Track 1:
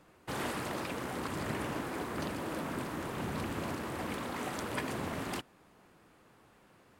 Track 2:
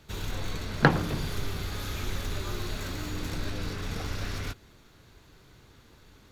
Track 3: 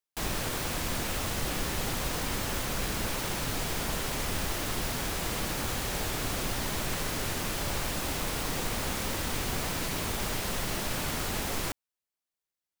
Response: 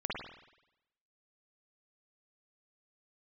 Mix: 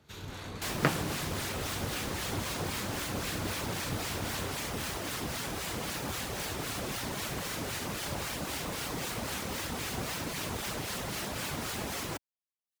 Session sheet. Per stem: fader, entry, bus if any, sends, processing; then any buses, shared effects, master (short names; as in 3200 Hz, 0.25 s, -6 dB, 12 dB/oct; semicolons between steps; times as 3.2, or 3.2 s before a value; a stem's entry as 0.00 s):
-10.0 dB, 0.00 s, no send, dry
-4.0 dB, 0.00 s, no send, dry
+1.0 dB, 0.45 s, no send, reverb removal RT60 0.54 s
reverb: off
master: HPF 73 Hz 12 dB/oct; harmonic tremolo 3.8 Hz, depth 50%, crossover 1100 Hz; Doppler distortion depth 0.49 ms